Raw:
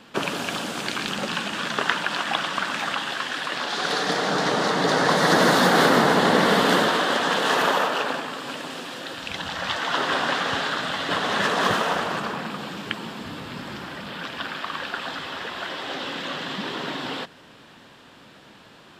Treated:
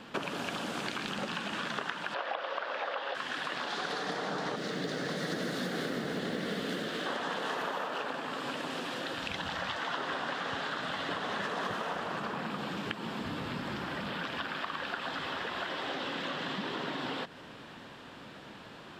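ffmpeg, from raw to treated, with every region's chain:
-filter_complex "[0:a]asettb=1/sr,asplit=3[a][b][c];[a]atrim=end=2.144[d];[b]atrim=start=2.14:end=3.15,asetpts=PTS-STARTPTS,afade=t=in:d=0.004:c=qsin,afade=t=out:st=1.006:d=0.004:c=qsin,highpass=f=520:t=q:w=4.7,acrossover=split=2900[e][f];[f]acompressor=threshold=-39dB:ratio=4:attack=1:release=60[g];[e][g]amix=inputs=2:normalize=0,highshelf=f=6.5k:t=q:w=1.5:g=-11[h];[c]atrim=start=3.146[i];[d][h]acrossfade=d=0.004:c1=hsin:c2=qsin[j];[j][i]acrossfade=d=0.004:c1=qsin:c2=hsin,asettb=1/sr,asplit=3[k][l][m];[k]atrim=end=4.564[n];[l]atrim=start=4.56:end=7.06,asetpts=PTS-STARTPTS,afade=t=in:d=0.004:c=qsin,afade=t=out:st=2.496:d=0.004:c=qsin,equalizer=f=940:t=o:w=0.95:g=-14.5,acrusher=bits=7:mode=log:mix=0:aa=0.000001[o];[m]atrim=start=7.056[p];[n][o]acrossfade=d=0.004:c1=hsin:c2=qsin[q];[q][p]acrossfade=d=0.004:c1=qsin:c2=hsin,highshelf=f=4.3k:g=-7,acompressor=threshold=-34dB:ratio=6,volume=1dB"

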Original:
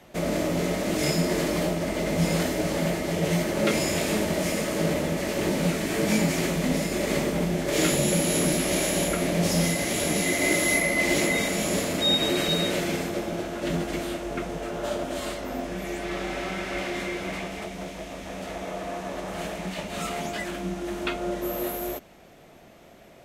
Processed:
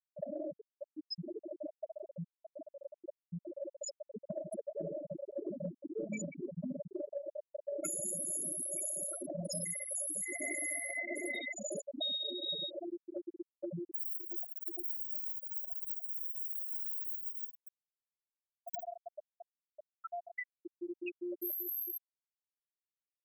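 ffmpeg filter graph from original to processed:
-filter_complex "[0:a]asettb=1/sr,asplit=3[a][b][c];[a]atrim=end=0.534[d];[b]atrim=start=0.53:end=4.29,asetpts=PTS-STARTPTS,afade=t=in:d=0.004:c=qsin,afade=t=out:st=3.756:d=0.004:c=qsin,equalizer=f=14k:w=2.4:g=-14.5,asoftclip=type=hard:threshold=-26dB[e];[c]atrim=start=4.286[f];[d][e]acrossfade=d=0.004:c1=hsin:c2=qsin[g];[g][f]acrossfade=d=0.004:c1=qsin:c2=hsin,asettb=1/sr,asplit=3[h][i][j];[h]atrim=end=7.024[k];[i]atrim=start=7.02:end=7.85,asetpts=PTS-STARTPTS,afade=t=in:d=0.004:c=qsin,afade=t=out:st=0.826:d=0.004:c=qsin,highpass=400,lowpass=3.1k,asplit=2[l][m];[m]adelay=37,volume=-7.5dB[n];[l][n]amix=inputs=2:normalize=0,atrim=end_sample=36603[o];[j]atrim=start=7.846[p];[k][o]acrossfade=d=0.004:c1=hsin:c2=qsin[q];[q][p]acrossfade=d=0.004:c1=qsin:c2=hsin,asettb=1/sr,asplit=3[r][s][t];[r]atrim=end=10.254[u];[s]atrim=start=10.25:end=12.32,asetpts=PTS-STARTPTS,afade=t=in:d=0.004:c=qsin,afade=t=out:st=2.066:d=0.004:c=qsin,highshelf=f=11k:g=-7,bandreject=f=163:t=h:w=4,bandreject=f=326:t=h:w=4,bandreject=f=489:t=h:w=4,bandreject=f=652:t=h:w=4,bandreject=f=815:t=h:w=4,bandreject=f=978:t=h:w=4,bandreject=f=1.141k:t=h:w=4,bandreject=f=1.304k:t=h:w=4,bandreject=f=1.467k:t=h:w=4,bandreject=f=1.63k:t=h:w=4,bandreject=f=1.793k:t=h:w=4,bandreject=f=1.956k:t=h:w=4,bandreject=f=2.119k:t=h:w=4,bandreject=f=2.282k:t=h:w=4,bandreject=f=2.445k:t=h:w=4,bandreject=f=2.608k:t=h:w=4,bandreject=f=2.771k:t=h:w=4,bandreject=f=2.934k:t=h:w=4,bandreject=f=3.097k:t=h:w=4,aecho=1:1:133|266|399:0.422|0.105|0.0264,atrim=end_sample=91287[v];[t]atrim=start=12.316[w];[u][v]acrossfade=d=0.004:c1=hsin:c2=qsin[x];[x][w]acrossfade=d=0.004:c1=qsin:c2=hsin,asettb=1/sr,asplit=3[y][z][aa];[y]atrim=end=13.944[ab];[z]atrim=start=13.94:end=18.86,asetpts=PTS-STARTPTS,afade=t=in:d=0.004:c=qsin,afade=t=out:st=4.916:d=0.004:c=qsin,adynamicequalizer=threshold=0.00178:dfrequency=3300:dqfactor=4.1:tfrequency=3300:tqfactor=4.1:attack=5:release=100:ratio=0.375:range=2.5:mode=cutabove:tftype=bell,aeval=exprs='(mod(20*val(0)+1,2)-1)/20':c=same,aecho=1:1:50|112.5|190.6|288.3|410.4|562.9:0.794|0.631|0.501|0.398|0.316|0.251,atrim=end_sample=216972[ac];[aa]atrim=start=18.856[ad];[ab][ac]acrossfade=d=0.004:c1=hsin:c2=qsin[ae];[ae][ad]acrossfade=d=0.004:c1=qsin:c2=hsin,aemphasis=mode=production:type=bsi,afftfilt=real='re*gte(hypot(re,im),0.224)':imag='im*gte(hypot(re,im),0.224)':win_size=1024:overlap=0.75,acompressor=threshold=-37dB:ratio=6"

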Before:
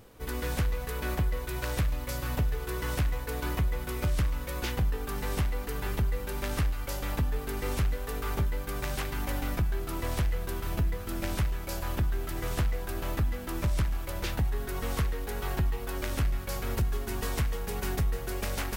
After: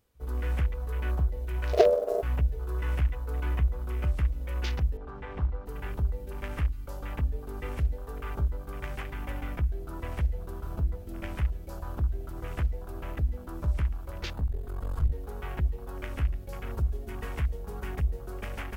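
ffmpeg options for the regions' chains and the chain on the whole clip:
-filter_complex "[0:a]asettb=1/sr,asplit=3[a][b][c];[a]atrim=end=1.734[d];[b]atrim=start=1.73:end=2.23,asetpts=PTS-STARTPTS,afade=t=in:d=0.004:c=qsin,afade=t=out:st=0.496:d=0.004:c=qsin,lowshelf=f=240:t=q:w=3:g=12.5,acrusher=bits=4:mode=log:mix=0:aa=0.000001,aeval=exprs='val(0)*sin(2*PI*540*n/s)':c=same[e];[c]atrim=start=2.226[f];[d][e]acrossfade=d=0.004:c1=hsin:c2=qsin[g];[g][f]acrossfade=d=0.004:c1=qsin:c2=hsin,asettb=1/sr,asplit=3[h][i][j];[h]atrim=end=4.974[k];[i]atrim=start=4.97:end=5.66,asetpts=PTS-STARTPTS,afade=t=in:d=0.004:c=qsin,afade=t=out:st=0.686:d=0.004:c=qsin,lowpass=2.7k,bandreject=f=50:t=h:w=6,bandreject=f=100:t=h:w=6,bandreject=f=150:t=h:w=6,bandreject=f=200:t=h:w=6,bandreject=f=250:t=h:w=6,bandreject=f=300:t=h:w=6,bandreject=f=350:t=h:w=6,bandreject=f=400:t=h:w=6,bandreject=f=450:t=h:w=6[l];[j]atrim=start=5.656[m];[k][l]acrossfade=d=0.004:c1=hsin:c2=qsin[n];[n][m]acrossfade=d=0.004:c1=qsin:c2=hsin,asettb=1/sr,asplit=3[o][p][q];[o]atrim=end=14.334[r];[p]atrim=start=14.33:end=15.12,asetpts=PTS-STARTPTS,afade=t=in:d=0.004:c=qsin,afade=t=out:st=0.786:d=0.004:c=qsin,asubboost=boost=11:cutoff=81,aeval=exprs='clip(val(0),-1,0.0224)':c=same,bandreject=f=5.7k:w=8.5[s];[q]atrim=start=15.116[t];[r][s]acrossfade=d=0.004:c1=hsin:c2=qsin[u];[u][t]acrossfade=d=0.004:c1=qsin:c2=hsin,highshelf=f=2.1k:g=6.5,afwtdn=0.0141,equalizer=f=65:w=4.9:g=14.5,volume=-5dB"

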